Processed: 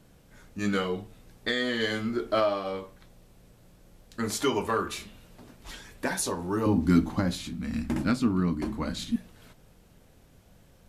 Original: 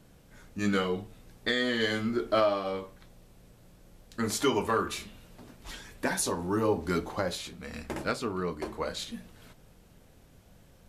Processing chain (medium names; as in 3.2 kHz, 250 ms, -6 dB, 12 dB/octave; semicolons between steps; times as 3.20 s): 6.66–9.16 s: resonant low shelf 340 Hz +8 dB, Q 3